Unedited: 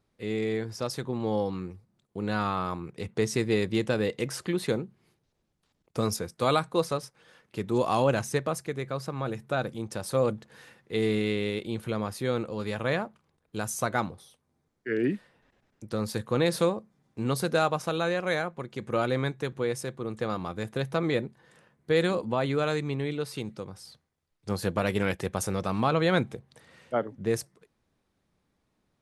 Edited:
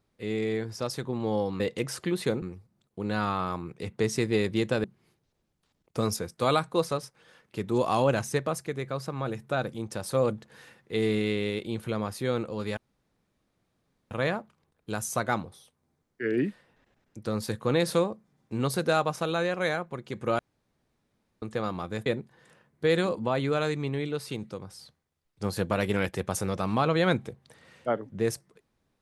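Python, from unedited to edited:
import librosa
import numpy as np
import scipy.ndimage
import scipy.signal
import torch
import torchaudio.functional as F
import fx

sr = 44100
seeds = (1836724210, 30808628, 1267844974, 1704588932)

y = fx.edit(x, sr, fx.move(start_s=4.02, length_s=0.82, to_s=1.6),
    fx.insert_room_tone(at_s=12.77, length_s=1.34),
    fx.room_tone_fill(start_s=19.05, length_s=1.03),
    fx.cut(start_s=20.72, length_s=0.4), tone=tone)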